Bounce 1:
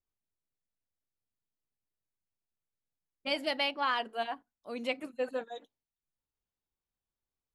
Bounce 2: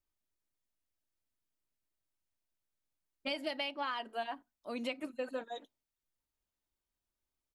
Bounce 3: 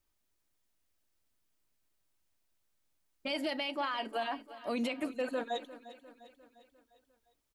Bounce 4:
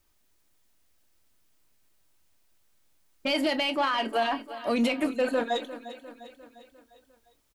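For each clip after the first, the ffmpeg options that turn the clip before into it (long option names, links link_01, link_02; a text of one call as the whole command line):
ffmpeg -i in.wav -af "aecho=1:1:3.2:0.31,acompressor=threshold=-35dB:ratio=6,volume=1dB" out.wav
ffmpeg -i in.wav -af "alimiter=level_in=10dB:limit=-24dB:level=0:latency=1:release=24,volume=-10dB,aecho=1:1:351|702|1053|1404|1755:0.158|0.084|0.0445|0.0236|0.0125,volume=8dB" out.wav
ffmpeg -i in.wav -filter_complex "[0:a]asplit=2[link_01][link_02];[link_02]asoftclip=type=tanh:threshold=-37dB,volume=-4.5dB[link_03];[link_01][link_03]amix=inputs=2:normalize=0,asplit=2[link_04][link_05];[link_05]adelay=26,volume=-13dB[link_06];[link_04][link_06]amix=inputs=2:normalize=0,volume=6dB" out.wav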